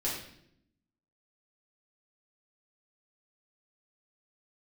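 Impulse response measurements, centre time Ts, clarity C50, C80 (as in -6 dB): 45 ms, 3.0 dB, 6.5 dB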